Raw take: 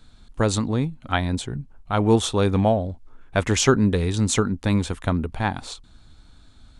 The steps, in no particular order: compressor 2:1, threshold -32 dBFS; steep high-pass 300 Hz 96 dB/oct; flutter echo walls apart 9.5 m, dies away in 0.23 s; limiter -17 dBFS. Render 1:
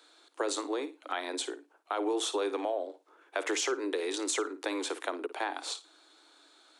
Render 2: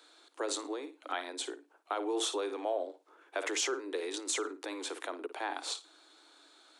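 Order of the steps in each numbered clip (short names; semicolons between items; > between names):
steep high-pass > limiter > flutter echo > compressor; flutter echo > limiter > compressor > steep high-pass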